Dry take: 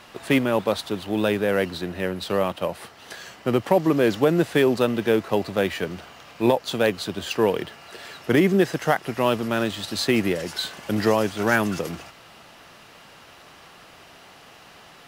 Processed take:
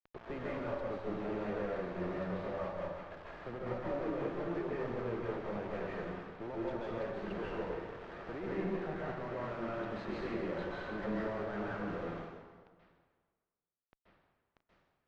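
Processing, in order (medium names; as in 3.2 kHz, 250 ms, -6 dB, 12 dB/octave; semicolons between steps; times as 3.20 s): local Wiener filter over 15 samples; level-controlled noise filter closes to 1.9 kHz; high-pass 1.3 kHz 6 dB/octave; peaking EQ 3.9 kHz -11.5 dB 1.4 oct; compression 20:1, threshold -37 dBFS, peak gain reduction 17 dB; bit crusher 8-bit; valve stage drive 43 dB, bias 0.6; tape spacing loss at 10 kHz 42 dB; plate-style reverb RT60 1.5 s, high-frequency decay 0.8×, pre-delay 120 ms, DRR -6 dB; trim +6.5 dB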